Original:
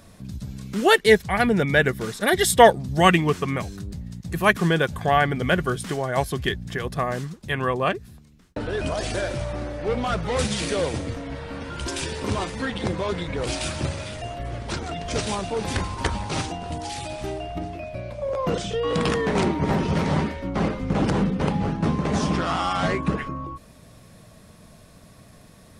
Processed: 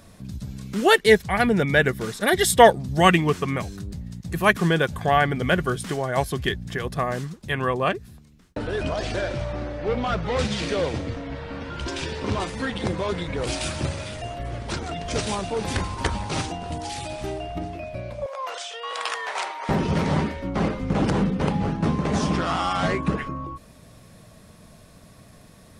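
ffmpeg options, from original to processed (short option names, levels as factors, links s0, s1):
-filter_complex "[0:a]asettb=1/sr,asplit=3[s0][s1][s2];[s0]atrim=end=8.834[s3];[s1]atrim=start=8.83:end=12.4,asetpts=PTS-STARTPTS,afade=t=in:d=0.004:c=qsin,afade=t=out:st=3.566:d=0.004:c=qsin,lowpass=5300[s4];[s2]atrim=start=12.396[s5];[s3][s4]acrossfade=d=0.004:c1=hsin:c2=qsin[s6];[s6][s5]acrossfade=d=0.004:c1=qsin:c2=hsin,asettb=1/sr,asplit=3[s7][s8][s9];[s7]atrim=end=18.264[s10];[s8]atrim=start=18.26:end=19.69,asetpts=PTS-STARTPTS,afade=t=in:d=0.004:c=qsin,afade=t=out:st=1.426:d=0.004:c=qsin,highpass=f=720:w=0.5412,highpass=f=720:w=1.3066[s11];[s9]atrim=start=19.686[s12];[s10][s11]acrossfade=d=0.004:c1=hsin:c2=qsin[s13];[s13][s12]acrossfade=d=0.004:c1=qsin:c2=hsin"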